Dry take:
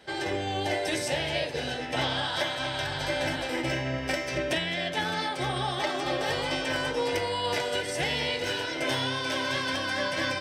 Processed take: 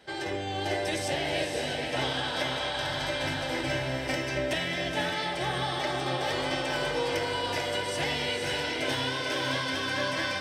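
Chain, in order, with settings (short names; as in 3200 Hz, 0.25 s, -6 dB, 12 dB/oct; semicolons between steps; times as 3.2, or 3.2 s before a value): diffused feedback echo 0.513 s, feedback 41%, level -3.5 dB; gain -2.5 dB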